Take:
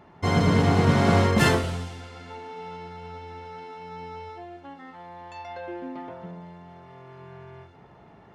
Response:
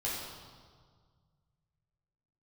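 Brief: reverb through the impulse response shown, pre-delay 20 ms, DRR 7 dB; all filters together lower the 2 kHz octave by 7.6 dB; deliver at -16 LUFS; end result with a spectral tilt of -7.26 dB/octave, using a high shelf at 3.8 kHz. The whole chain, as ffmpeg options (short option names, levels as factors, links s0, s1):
-filter_complex "[0:a]equalizer=f=2000:t=o:g=-8,highshelf=f=3800:g=-6.5,asplit=2[s0][s1];[1:a]atrim=start_sample=2205,adelay=20[s2];[s1][s2]afir=irnorm=-1:irlink=0,volume=0.266[s3];[s0][s3]amix=inputs=2:normalize=0,volume=2"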